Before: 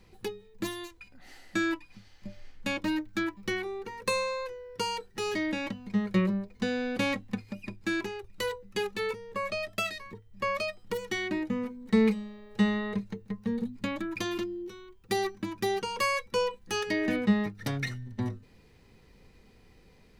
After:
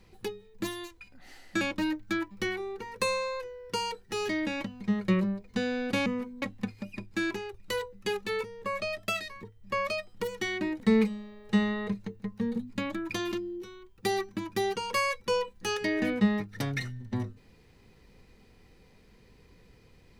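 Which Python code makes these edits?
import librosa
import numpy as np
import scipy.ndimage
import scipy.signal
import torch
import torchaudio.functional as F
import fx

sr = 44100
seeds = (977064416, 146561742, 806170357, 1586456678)

y = fx.edit(x, sr, fx.cut(start_s=1.61, length_s=1.06),
    fx.move(start_s=11.5, length_s=0.36, to_s=7.12), tone=tone)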